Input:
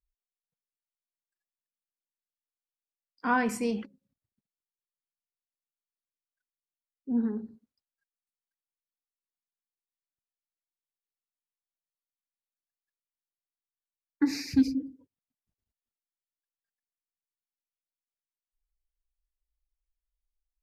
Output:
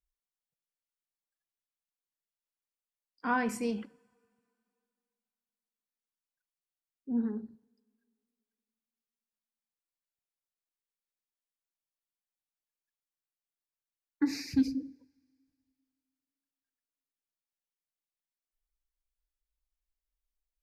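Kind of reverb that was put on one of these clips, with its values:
coupled-rooms reverb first 0.56 s, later 2.6 s, from −18 dB, DRR 19.5 dB
level −3.5 dB

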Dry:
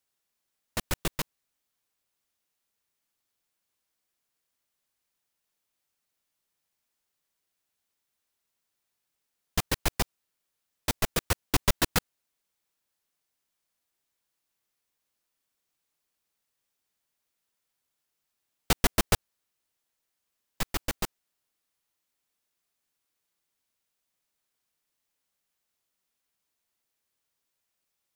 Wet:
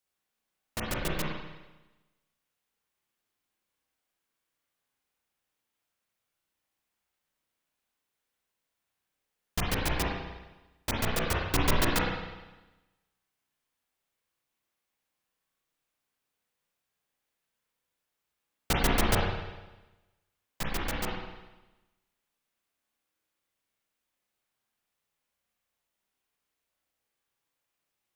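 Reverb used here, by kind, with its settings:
spring reverb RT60 1.1 s, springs 32/50 ms, chirp 60 ms, DRR −4 dB
level −4 dB

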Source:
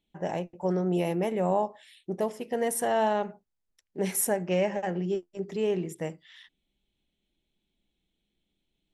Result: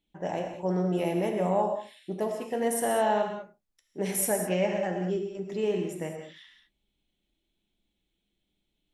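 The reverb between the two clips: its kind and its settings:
reverb whose tail is shaped and stops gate 230 ms flat, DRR 2.5 dB
level −1.5 dB

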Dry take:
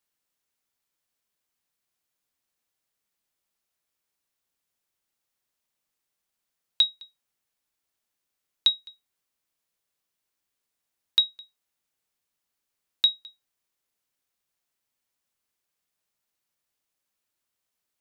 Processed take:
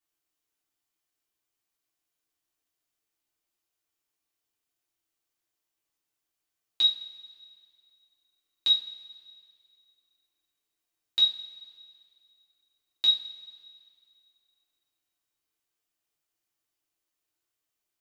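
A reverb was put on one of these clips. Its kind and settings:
coupled-rooms reverb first 0.36 s, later 2.3 s, from −20 dB, DRR −5.5 dB
level −9 dB

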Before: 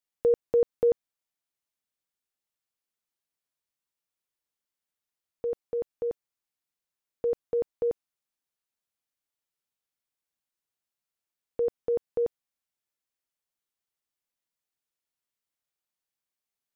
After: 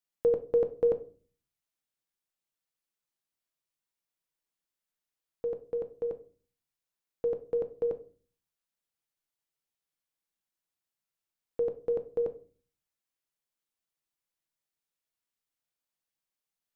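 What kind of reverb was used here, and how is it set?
rectangular room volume 240 cubic metres, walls furnished, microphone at 0.68 metres
level −2 dB

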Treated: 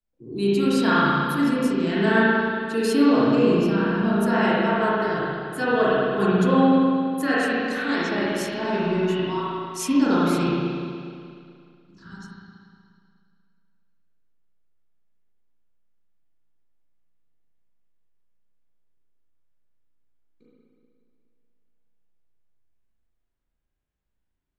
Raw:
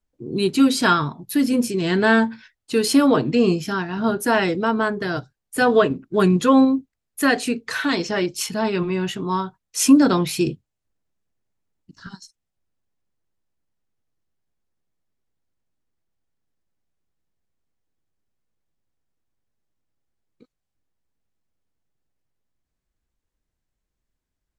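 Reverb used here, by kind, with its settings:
spring reverb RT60 2.3 s, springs 35/60 ms, chirp 45 ms, DRR −8.5 dB
level −10 dB

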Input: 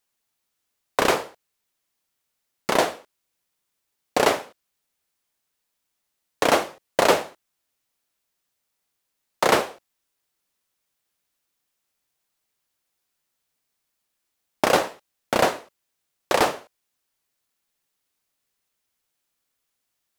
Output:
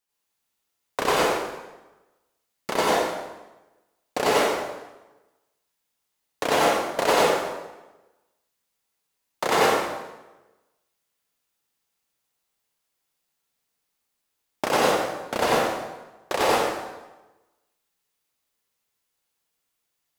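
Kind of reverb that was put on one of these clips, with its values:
dense smooth reverb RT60 1.1 s, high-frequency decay 0.8×, pre-delay 75 ms, DRR −6 dB
level −6.5 dB

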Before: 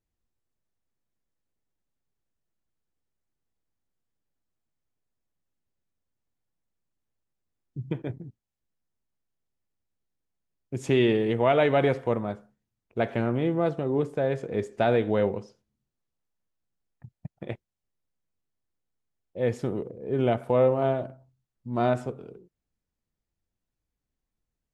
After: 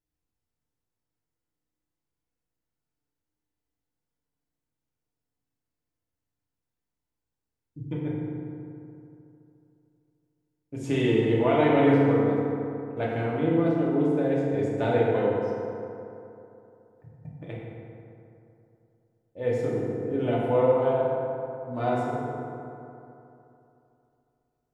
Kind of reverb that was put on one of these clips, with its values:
feedback delay network reverb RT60 2.9 s, high-frequency decay 0.45×, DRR −6 dB
level −7 dB

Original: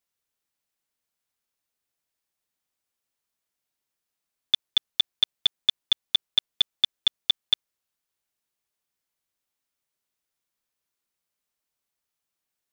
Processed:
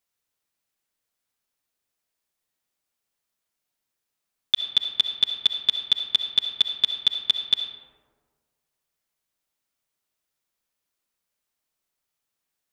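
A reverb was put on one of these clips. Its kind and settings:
comb and all-pass reverb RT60 1.6 s, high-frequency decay 0.35×, pre-delay 25 ms, DRR 6.5 dB
level +1.5 dB

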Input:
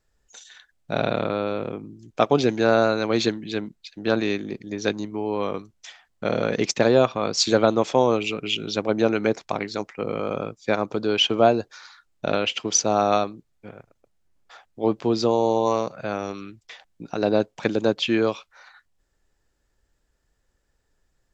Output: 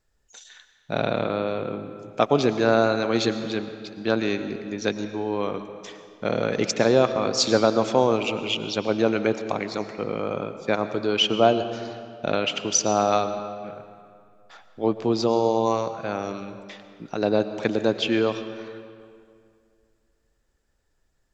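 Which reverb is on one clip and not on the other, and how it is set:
comb and all-pass reverb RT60 2.3 s, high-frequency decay 0.7×, pre-delay 70 ms, DRR 10 dB
level −1 dB

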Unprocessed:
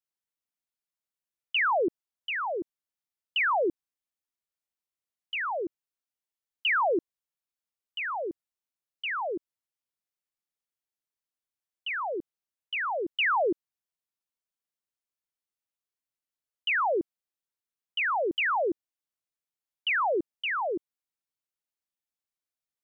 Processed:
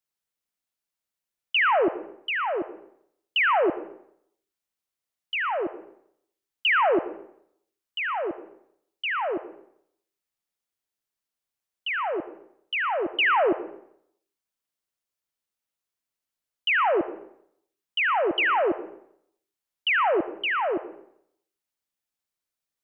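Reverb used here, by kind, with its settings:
comb and all-pass reverb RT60 0.7 s, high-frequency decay 0.8×, pre-delay 40 ms, DRR 11 dB
level +4 dB

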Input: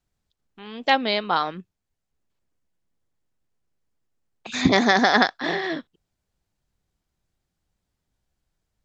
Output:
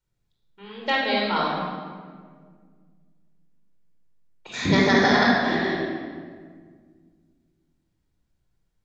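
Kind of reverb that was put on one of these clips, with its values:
rectangular room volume 2,400 cubic metres, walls mixed, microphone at 4.6 metres
level −7.5 dB

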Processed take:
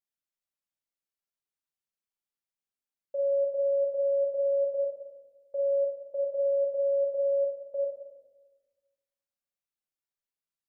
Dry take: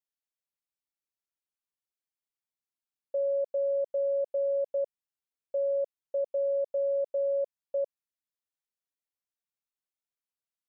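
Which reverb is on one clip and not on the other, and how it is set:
rectangular room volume 730 cubic metres, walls mixed, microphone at 1.2 metres
level −4.5 dB

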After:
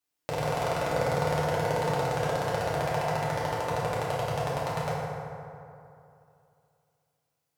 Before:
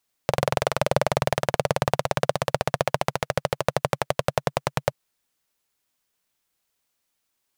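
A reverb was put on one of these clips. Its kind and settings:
feedback delay network reverb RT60 2.7 s, high-frequency decay 0.45×, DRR −8.5 dB
level −13 dB

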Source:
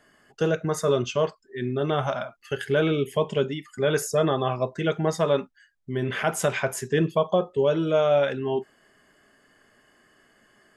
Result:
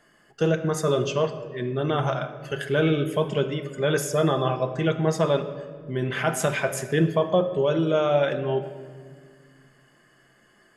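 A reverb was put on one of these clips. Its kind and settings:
rectangular room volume 2,500 cubic metres, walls mixed, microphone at 0.79 metres

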